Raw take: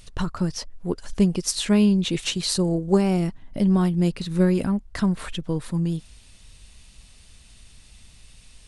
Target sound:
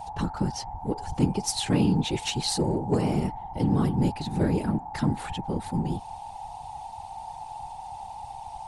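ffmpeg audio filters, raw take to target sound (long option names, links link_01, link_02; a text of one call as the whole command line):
ffmpeg -i in.wav -filter_complex "[0:a]bandreject=frequency=219.9:width_type=h:width=4,bandreject=frequency=439.8:width_type=h:width=4,bandreject=frequency=659.7:width_type=h:width=4,bandreject=frequency=879.6:width_type=h:width=4,bandreject=frequency=1099.5:width_type=h:width=4,bandreject=frequency=1319.4:width_type=h:width=4,bandreject=frequency=1539.3:width_type=h:width=4,bandreject=frequency=1759.2:width_type=h:width=4,bandreject=frequency=1979.1:width_type=h:width=4,bandreject=frequency=2199:width_type=h:width=4,bandreject=frequency=2418.9:width_type=h:width=4,asplit=2[link_01][link_02];[link_02]asoftclip=type=hard:threshold=-19.5dB,volume=-8.5dB[link_03];[link_01][link_03]amix=inputs=2:normalize=0,aeval=exprs='val(0)+0.0316*sin(2*PI*840*n/s)':channel_layout=same,afftfilt=real='hypot(re,im)*cos(2*PI*random(0))':imag='hypot(re,im)*sin(2*PI*random(1))':win_size=512:overlap=0.75" out.wav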